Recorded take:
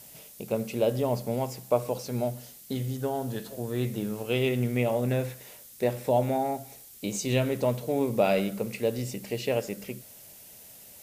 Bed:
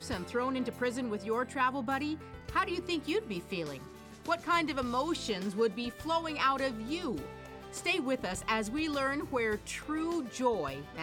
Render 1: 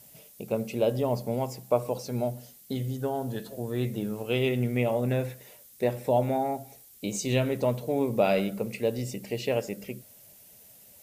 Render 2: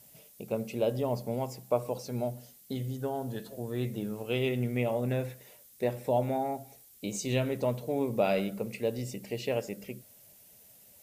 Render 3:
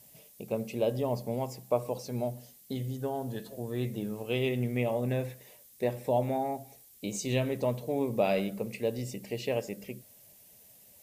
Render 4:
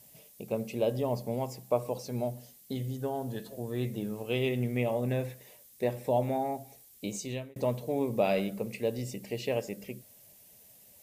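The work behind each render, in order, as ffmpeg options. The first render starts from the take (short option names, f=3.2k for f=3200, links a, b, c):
-af "afftdn=nr=6:nf=-50"
-af "volume=-3.5dB"
-af "bandreject=f=1.4k:w=9.7"
-filter_complex "[0:a]asplit=2[a][b];[a]atrim=end=7.56,asetpts=PTS-STARTPTS,afade=t=out:st=7.06:d=0.5[c];[b]atrim=start=7.56,asetpts=PTS-STARTPTS,afade=t=in:d=0.004:c=hsin[d];[c][d]concat=n=2:v=0:a=1"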